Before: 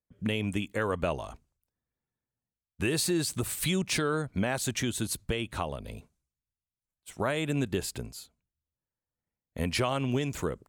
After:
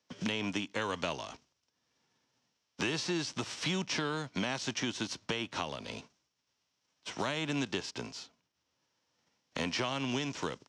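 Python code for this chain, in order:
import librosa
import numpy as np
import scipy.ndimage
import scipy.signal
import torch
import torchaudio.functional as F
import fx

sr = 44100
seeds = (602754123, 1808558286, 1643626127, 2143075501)

y = fx.envelope_flatten(x, sr, power=0.6)
y = fx.cabinet(y, sr, low_hz=140.0, low_slope=12, high_hz=6000.0, hz=(280.0, 950.0, 3000.0, 5600.0), db=(4, 4, 4, 9))
y = fx.band_squash(y, sr, depth_pct=70)
y = y * 10.0 ** (-5.5 / 20.0)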